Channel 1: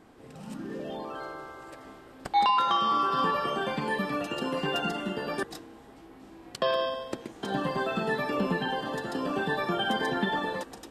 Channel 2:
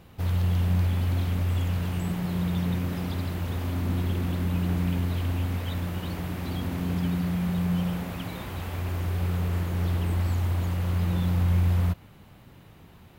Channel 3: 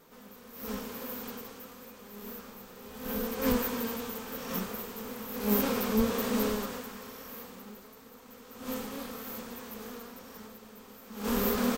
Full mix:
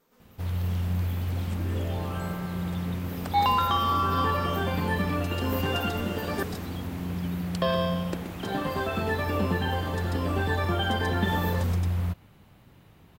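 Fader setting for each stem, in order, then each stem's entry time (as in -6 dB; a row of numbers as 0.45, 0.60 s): 0.0, -4.0, -10.0 dB; 1.00, 0.20, 0.00 s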